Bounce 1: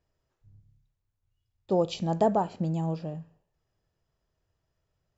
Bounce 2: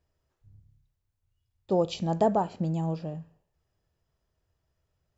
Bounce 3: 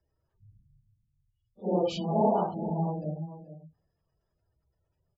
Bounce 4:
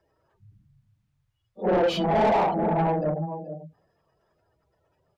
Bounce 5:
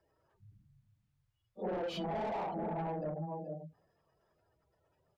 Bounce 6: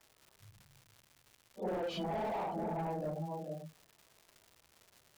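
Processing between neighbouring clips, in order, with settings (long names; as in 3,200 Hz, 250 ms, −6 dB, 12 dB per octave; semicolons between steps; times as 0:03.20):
parametric band 72 Hz +7.5 dB 0.33 octaves
random phases in long frames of 200 ms; single-tap delay 438 ms −13 dB; gate on every frequency bin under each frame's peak −25 dB strong
mid-hump overdrive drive 25 dB, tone 1,400 Hz, clips at −13.5 dBFS
downward compressor 6 to 1, threshold −30 dBFS, peak gain reduction 11.5 dB; level −5.5 dB
surface crackle 320 per second −48 dBFS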